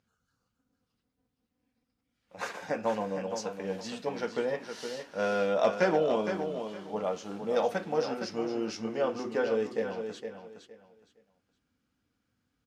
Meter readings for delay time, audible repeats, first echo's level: 464 ms, 3, -8.0 dB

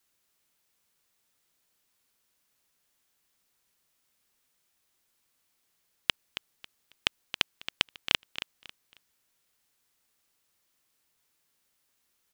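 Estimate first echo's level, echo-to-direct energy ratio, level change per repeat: -11.5 dB, -11.0 dB, -12.0 dB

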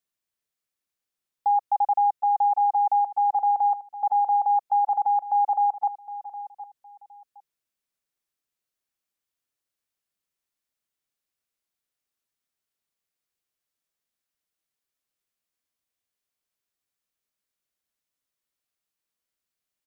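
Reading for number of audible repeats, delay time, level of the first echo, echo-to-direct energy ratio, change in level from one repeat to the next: 2, 763 ms, -14.5 dB, -14.5 dB, -13.0 dB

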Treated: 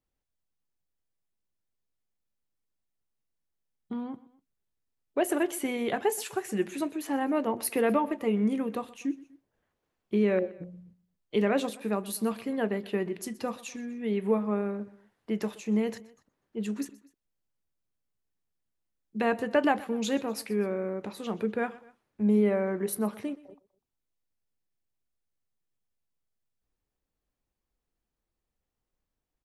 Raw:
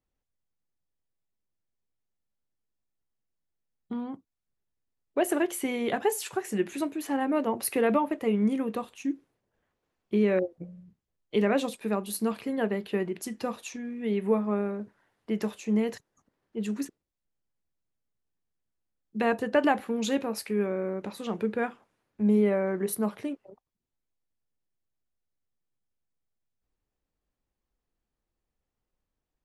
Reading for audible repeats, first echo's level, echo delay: 2, -20.0 dB, 124 ms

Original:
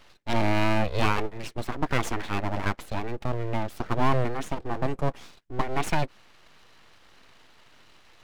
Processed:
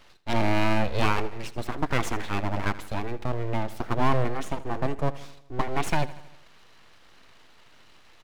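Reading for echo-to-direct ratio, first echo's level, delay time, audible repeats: -15.5 dB, -17.0 dB, 79 ms, 4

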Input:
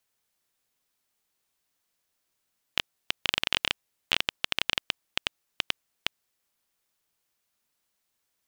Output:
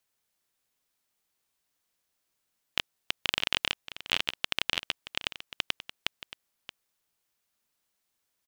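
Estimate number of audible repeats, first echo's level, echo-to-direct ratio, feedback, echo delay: 1, -14.0 dB, -14.0 dB, no regular repeats, 626 ms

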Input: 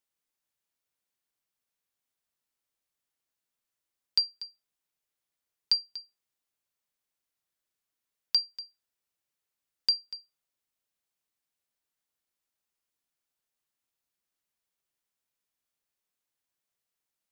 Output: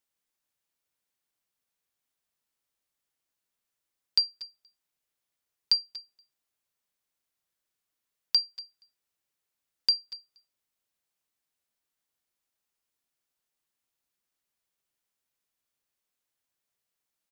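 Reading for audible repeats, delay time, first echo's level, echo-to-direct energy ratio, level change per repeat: 1, 234 ms, -24.0 dB, -24.0 dB, no regular repeats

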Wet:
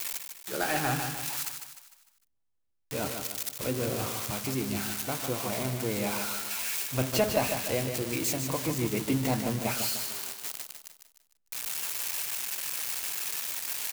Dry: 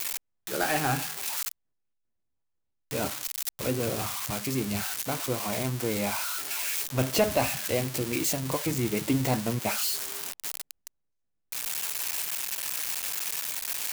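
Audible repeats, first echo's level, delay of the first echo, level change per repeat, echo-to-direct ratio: 4, -7.0 dB, 151 ms, -7.0 dB, -6.0 dB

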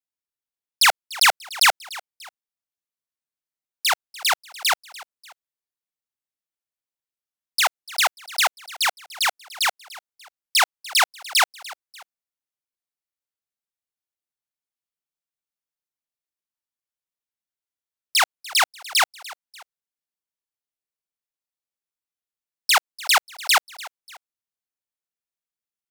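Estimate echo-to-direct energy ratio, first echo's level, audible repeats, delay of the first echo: -18.5 dB, -19.0 dB, 2, 294 ms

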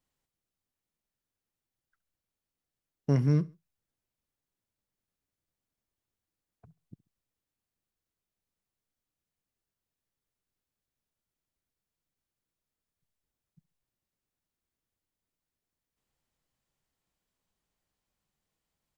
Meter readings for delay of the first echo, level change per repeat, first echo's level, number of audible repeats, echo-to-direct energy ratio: 68 ms, -8.5 dB, -23.0 dB, 2, -22.5 dB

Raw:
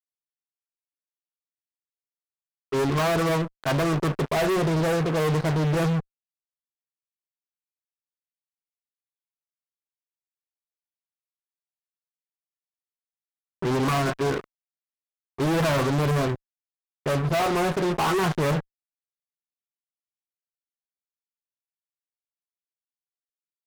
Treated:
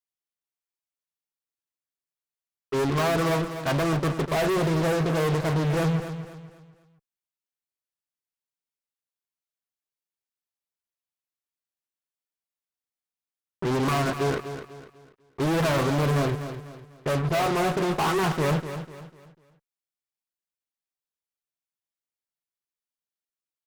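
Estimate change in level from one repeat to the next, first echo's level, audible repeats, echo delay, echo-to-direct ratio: -9.0 dB, -10.5 dB, 3, 248 ms, -10.0 dB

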